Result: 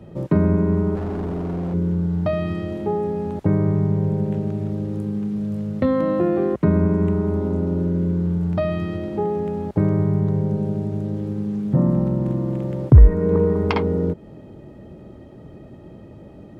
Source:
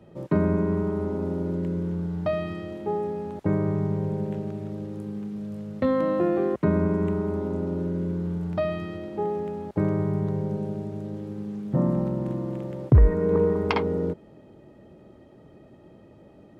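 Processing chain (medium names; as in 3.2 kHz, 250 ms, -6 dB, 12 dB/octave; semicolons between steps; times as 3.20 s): bass shelf 210 Hz +8.5 dB; in parallel at +2 dB: compression, threshold -28 dBFS, peak gain reduction 22 dB; 0.95–1.74 s: on the sum: hard clipper -21.5 dBFS, distortion -21 dB; trim -1.5 dB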